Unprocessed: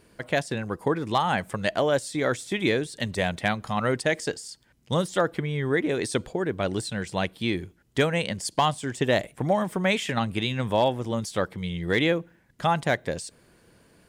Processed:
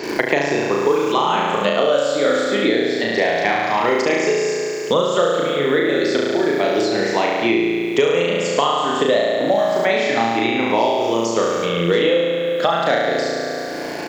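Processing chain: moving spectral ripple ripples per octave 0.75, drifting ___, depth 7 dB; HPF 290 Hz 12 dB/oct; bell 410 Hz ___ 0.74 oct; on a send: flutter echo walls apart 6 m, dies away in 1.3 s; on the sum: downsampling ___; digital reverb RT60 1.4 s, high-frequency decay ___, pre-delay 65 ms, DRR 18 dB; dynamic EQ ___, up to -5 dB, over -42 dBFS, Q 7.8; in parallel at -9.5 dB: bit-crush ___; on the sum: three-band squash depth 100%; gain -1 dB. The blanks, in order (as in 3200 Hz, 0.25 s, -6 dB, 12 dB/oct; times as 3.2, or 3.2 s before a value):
+0.29 Hz, +5 dB, 16000 Hz, 0.4×, 1600 Hz, 8-bit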